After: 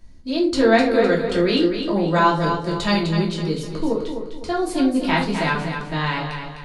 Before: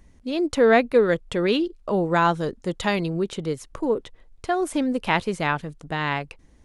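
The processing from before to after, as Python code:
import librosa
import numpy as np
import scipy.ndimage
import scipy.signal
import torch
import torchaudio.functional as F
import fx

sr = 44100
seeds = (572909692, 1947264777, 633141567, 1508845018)

p1 = fx.peak_eq(x, sr, hz=4500.0, db=11.5, octaves=0.39)
p2 = p1 + fx.echo_feedback(p1, sr, ms=254, feedback_pct=38, wet_db=-7.5, dry=0)
p3 = fx.room_shoebox(p2, sr, seeds[0], volume_m3=260.0, walls='furnished', distance_m=2.8)
y = p3 * librosa.db_to_amplitude(-4.0)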